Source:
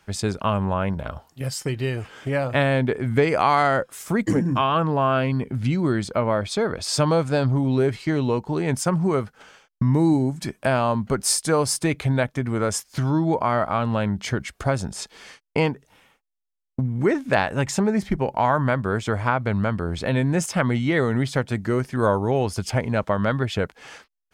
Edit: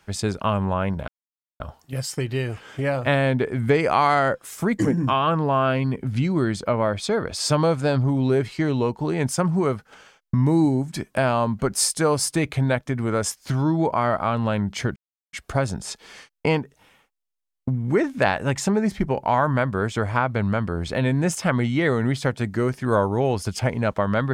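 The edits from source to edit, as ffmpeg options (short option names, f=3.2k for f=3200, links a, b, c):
-filter_complex "[0:a]asplit=3[a][b][c];[a]atrim=end=1.08,asetpts=PTS-STARTPTS,afade=t=out:st=1.076:d=0.004:c=hsin,apad=pad_dur=0.52[d];[b]atrim=start=1.08:end=14.44,asetpts=PTS-STARTPTS,afade=t=in:d=0.004:c=hsin,afade=t=out:st=13.356:d=0.004:c=hsin,apad=pad_dur=0.37[e];[c]atrim=start=14.44,asetpts=PTS-STARTPTS,afade=t=in:d=0.004:c=hsin[f];[d][e][f]concat=n=3:v=0:a=1"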